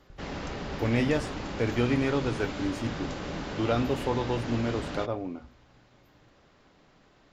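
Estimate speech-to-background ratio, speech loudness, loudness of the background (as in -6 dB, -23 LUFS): 6.5 dB, -30.0 LUFS, -36.5 LUFS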